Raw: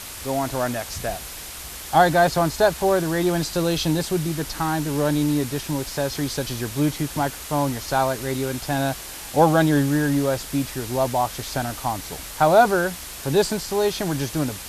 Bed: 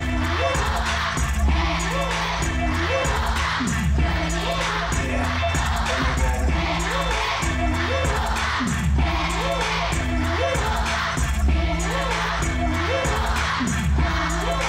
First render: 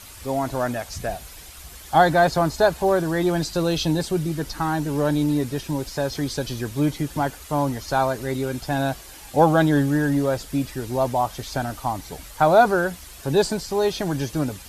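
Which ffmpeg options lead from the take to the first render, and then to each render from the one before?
ffmpeg -i in.wav -af "afftdn=noise_reduction=9:noise_floor=-36" out.wav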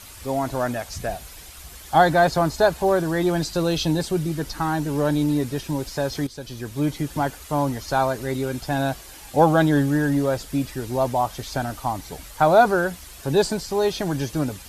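ffmpeg -i in.wav -filter_complex "[0:a]asplit=2[link_01][link_02];[link_01]atrim=end=6.27,asetpts=PTS-STARTPTS,afade=type=out:start_time=6.266:duration=0.004:curve=hsin:silence=0.199526[link_03];[link_02]atrim=start=6.27,asetpts=PTS-STARTPTS,afade=type=in:duration=1:curve=qsin:silence=0.199526[link_04];[link_03][link_04]concat=n=2:v=0:a=1" out.wav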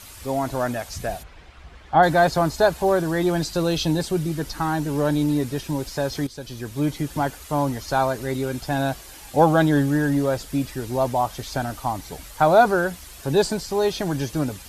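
ffmpeg -i in.wav -filter_complex "[0:a]asplit=3[link_01][link_02][link_03];[link_01]afade=type=out:start_time=1.22:duration=0.02[link_04];[link_02]lowpass=2300,afade=type=in:start_time=1.22:duration=0.02,afade=type=out:start_time=2.02:duration=0.02[link_05];[link_03]afade=type=in:start_time=2.02:duration=0.02[link_06];[link_04][link_05][link_06]amix=inputs=3:normalize=0" out.wav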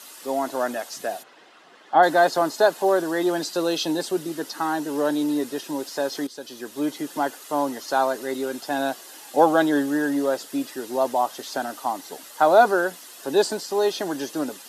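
ffmpeg -i in.wav -af "highpass=frequency=260:width=0.5412,highpass=frequency=260:width=1.3066,bandreject=frequency=2300:width=7.8" out.wav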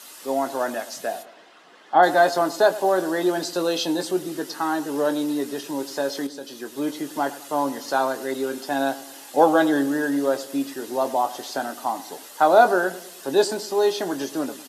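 ffmpeg -i in.wav -filter_complex "[0:a]asplit=2[link_01][link_02];[link_02]adelay=22,volume=-10.5dB[link_03];[link_01][link_03]amix=inputs=2:normalize=0,asplit=2[link_04][link_05];[link_05]adelay=105,lowpass=frequency=1200:poles=1,volume=-15dB,asplit=2[link_06][link_07];[link_07]adelay=105,lowpass=frequency=1200:poles=1,volume=0.51,asplit=2[link_08][link_09];[link_09]adelay=105,lowpass=frequency=1200:poles=1,volume=0.51,asplit=2[link_10][link_11];[link_11]adelay=105,lowpass=frequency=1200:poles=1,volume=0.51,asplit=2[link_12][link_13];[link_13]adelay=105,lowpass=frequency=1200:poles=1,volume=0.51[link_14];[link_04][link_06][link_08][link_10][link_12][link_14]amix=inputs=6:normalize=0" out.wav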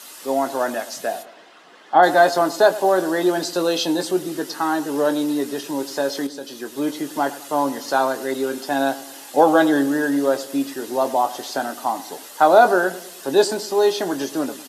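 ffmpeg -i in.wav -af "volume=3dB,alimiter=limit=-2dB:level=0:latency=1" out.wav

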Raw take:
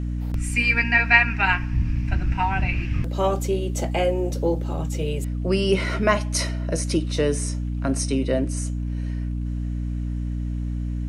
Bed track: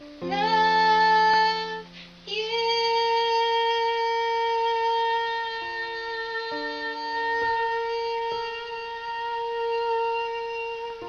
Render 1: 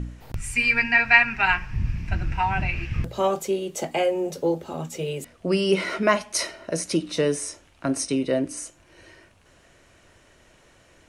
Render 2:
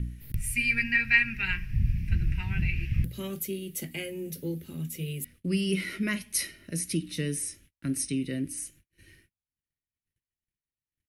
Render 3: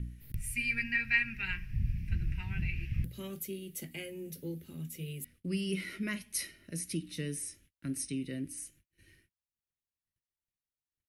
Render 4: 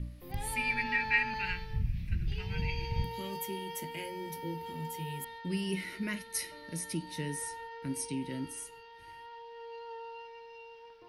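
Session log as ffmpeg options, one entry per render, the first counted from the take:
ffmpeg -i in.wav -af "bandreject=frequency=60:width_type=h:width=4,bandreject=frequency=120:width_type=h:width=4,bandreject=frequency=180:width_type=h:width=4,bandreject=frequency=240:width_type=h:width=4,bandreject=frequency=300:width_type=h:width=4" out.wav
ffmpeg -i in.wav -af "agate=range=-41dB:threshold=-50dB:ratio=16:detection=peak,firequalizer=gain_entry='entry(170,0);entry(730,-30);entry(1900,-5);entry(7400,-9);entry(11000,10)':delay=0.05:min_phase=1" out.wav
ffmpeg -i in.wav -af "volume=-6.5dB" out.wav
ffmpeg -i in.wav -i bed.wav -filter_complex "[1:a]volume=-19dB[link_01];[0:a][link_01]amix=inputs=2:normalize=0" out.wav

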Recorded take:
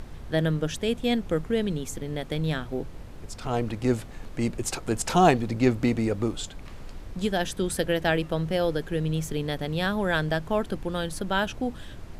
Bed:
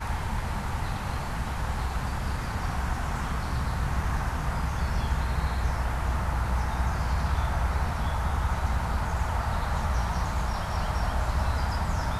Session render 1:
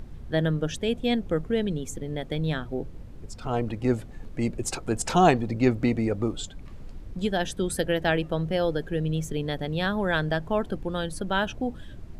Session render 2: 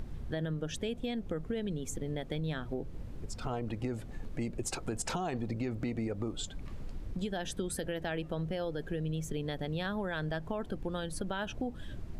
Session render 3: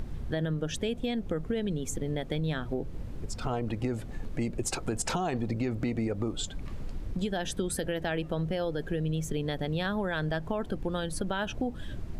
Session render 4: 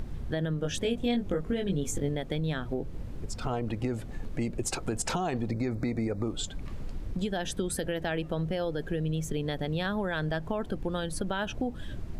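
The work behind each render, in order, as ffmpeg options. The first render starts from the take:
ffmpeg -i in.wav -af "afftdn=noise_reduction=9:noise_floor=-42" out.wav
ffmpeg -i in.wav -af "alimiter=limit=-18.5dB:level=0:latency=1:release=44,acompressor=threshold=-33dB:ratio=4" out.wav
ffmpeg -i in.wav -af "volume=4.5dB" out.wav
ffmpeg -i in.wav -filter_complex "[0:a]asettb=1/sr,asplit=3[link_01][link_02][link_03];[link_01]atrim=end=0.604[link_04];[link_02]atrim=start=0.6:end=2.09,asetpts=PTS-STARTPTS,afade=type=in:duration=0.004:curve=qsin,afade=type=out:start_time=1.486:duration=0.004:curve=qsin,asplit=2[link_05][link_06];[link_06]adelay=21,volume=-3dB[link_07];[link_05][link_07]amix=inputs=2:normalize=0,atrim=end_sample=65709[link_08];[link_03]atrim=start=2.086[link_09];[link_04][link_08]acrossfade=duration=0.004:curve1=hsin:curve2=qsin[link_10];[link_10][link_09]acrossfade=duration=0.004:curve1=qsin:curve2=hsin,asettb=1/sr,asplit=3[link_11][link_12][link_13];[link_11]atrim=end=5.514[link_14];[link_12]atrim=start=5.51:end=6.24,asetpts=PTS-STARTPTS,afade=type=in:duration=0.004:curve=qsin,afade=type=out:start_time=0.726:duration=0.004:curve=qsin,asuperstop=centerf=3000:order=8:qfactor=2.8[link_15];[link_13]atrim=start=6.236[link_16];[link_14][link_15]acrossfade=duration=0.004:curve1=hsin:curve2=qsin[link_17];[link_17][link_16]acrossfade=duration=0.004:curve1=qsin:curve2=hsin" out.wav

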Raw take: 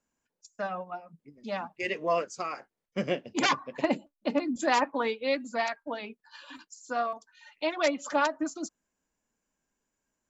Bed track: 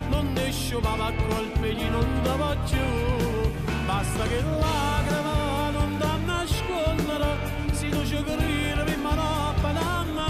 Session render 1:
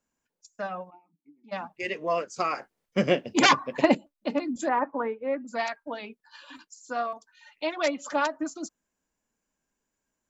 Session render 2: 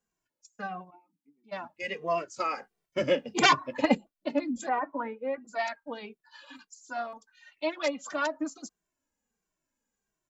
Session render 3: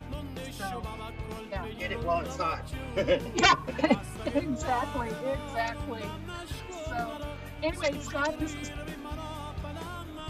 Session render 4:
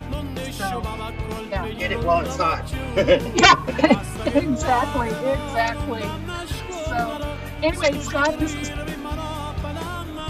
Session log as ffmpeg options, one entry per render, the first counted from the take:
ffmpeg -i in.wav -filter_complex "[0:a]asplit=3[link_01][link_02][link_03];[link_01]afade=type=out:start_time=0.89:duration=0.02[link_04];[link_02]asplit=3[link_05][link_06][link_07];[link_05]bandpass=frequency=300:width_type=q:width=8,volume=0dB[link_08];[link_06]bandpass=frequency=870:width_type=q:width=8,volume=-6dB[link_09];[link_07]bandpass=frequency=2240:width_type=q:width=8,volume=-9dB[link_10];[link_08][link_09][link_10]amix=inputs=3:normalize=0,afade=type=in:start_time=0.89:duration=0.02,afade=type=out:start_time=1.51:duration=0.02[link_11];[link_03]afade=type=in:start_time=1.51:duration=0.02[link_12];[link_04][link_11][link_12]amix=inputs=3:normalize=0,asettb=1/sr,asplit=3[link_13][link_14][link_15];[link_13]atrim=end=2.364[link_16];[link_14]atrim=start=2.36:end=3.95,asetpts=PTS-STARTPTS,afade=type=in:duration=0.004:curve=qsin,afade=type=out:start_time=1.586:duration=0.004:curve=qsin,acontrast=73[link_17];[link_15]atrim=start=3.946[link_18];[link_16][link_17]acrossfade=duration=0.004:curve1=hsin:curve2=qsin[link_19];[link_19][link_18]acrossfade=duration=0.004:curve1=qsin:curve2=hsin,asplit=3[link_20][link_21][link_22];[link_20]afade=type=out:start_time=4.67:duration=0.02[link_23];[link_21]lowpass=frequency=1700:width=0.5412,lowpass=frequency=1700:width=1.3066,afade=type=in:start_time=4.67:duration=0.02,afade=type=out:start_time=5.47:duration=0.02[link_24];[link_22]afade=type=in:start_time=5.47:duration=0.02[link_25];[link_23][link_24][link_25]amix=inputs=3:normalize=0" out.wav
ffmpeg -i in.wav -filter_complex "[0:a]asplit=2[link_01][link_02];[link_02]adelay=2.1,afreqshift=-1.5[link_03];[link_01][link_03]amix=inputs=2:normalize=1" out.wav
ffmpeg -i in.wav -i bed.wav -filter_complex "[1:a]volume=-13dB[link_01];[0:a][link_01]amix=inputs=2:normalize=0" out.wav
ffmpeg -i in.wav -af "volume=9.5dB,alimiter=limit=-1dB:level=0:latency=1" out.wav

